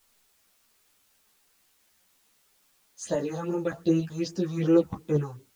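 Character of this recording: phasing stages 4, 2.6 Hz, lowest notch 340–4200 Hz; random-step tremolo; a quantiser's noise floor 12-bit, dither triangular; a shimmering, thickened sound

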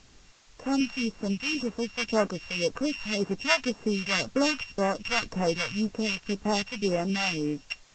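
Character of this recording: a buzz of ramps at a fixed pitch in blocks of 16 samples; phasing stages 2, 1.9 Hz, lowest notch 320–3900 Hz; a quantiser's noise floor 10-bit, dither triangular; A-law

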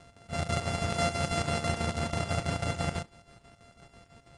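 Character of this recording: a buzz of ramps at a fixed pitch in blocks of 64 samples; chopped level 6.1 Hz, depth 65%, duty 65%; AAC

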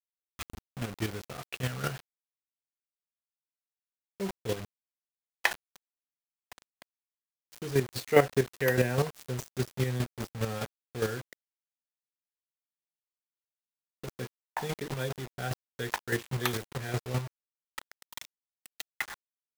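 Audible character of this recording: a quantiser's noise floor 6-bit, dither none; chopped level 4.9 Hz, depth 60%, duty 20%

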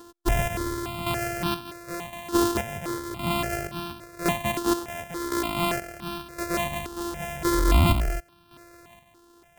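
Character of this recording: a buzz of ramps at a fixed pitch in blocks of 128 samples; chopped level 0.94 Hz, depth 60%, duty 45%; notches that jump at a steady rate 3.5 Hz 600–2000 Hz

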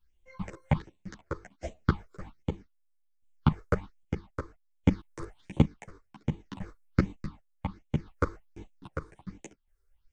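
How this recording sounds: phasing stages 6, 1.3 Hz, lowest notch 200–1400 Hz; chopped level 0.62 Hz, depth 60%, duty 50%; a shimmering, thickened sound

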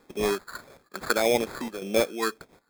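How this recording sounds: phasing stages 4, 1.7 Hz, lowest notch 580–1500 Hz; aliases and images of a low sample rate 2900 Hz, jitter 0%; chopped level 1.1 Hz, depth 65%, duty 85%

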